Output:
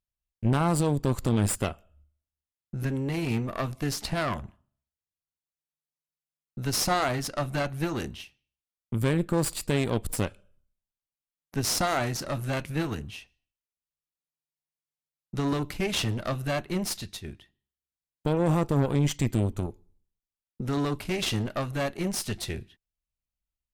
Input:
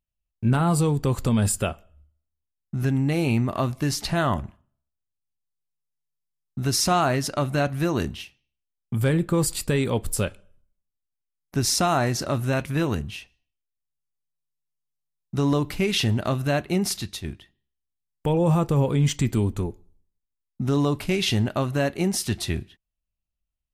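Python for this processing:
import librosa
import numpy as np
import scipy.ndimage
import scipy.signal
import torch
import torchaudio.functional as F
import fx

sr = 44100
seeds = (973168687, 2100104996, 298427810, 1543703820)

y = fx.cheby_harmonics(x, sr, harmonics=(4,), levels_db=(-12,), full_scale_db=-10.5)
y = F.gain(torch.from_numpy(y), -5.0).numpy()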